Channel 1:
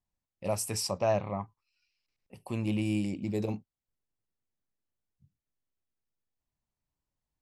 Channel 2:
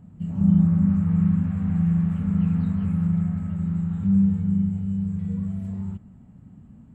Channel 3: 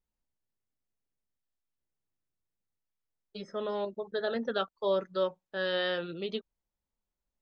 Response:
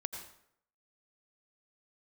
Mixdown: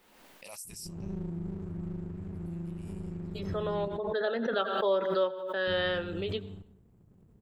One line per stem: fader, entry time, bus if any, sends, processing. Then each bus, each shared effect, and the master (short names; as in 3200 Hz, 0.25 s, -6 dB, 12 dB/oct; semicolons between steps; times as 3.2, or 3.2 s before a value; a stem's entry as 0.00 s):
4.31 s -14 dB -> 4.61 s -3 dB, 0.00 s, bus A, no send, differentiator
-16.0 dB, 0.65 s, muted 3.88–5.67, bus A, send -7 dB, running maximum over 65 samples
-1.5 dB, 0.00 s, no bus, send -8 dB, three-band isolator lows -23 dB, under 210 Hz, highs -23 dB, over 3600 Hz
bus A: 0.0 dB, high shelf 7500 Hz -9 dB; compressor, threshold -41 dBFS, peak gain reduction 10 dB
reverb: on, RT60 0.70 s, pre-delay 77 ms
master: high shelf 5600 Hz +11.5 dB; backwards sustainer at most 39 dB/s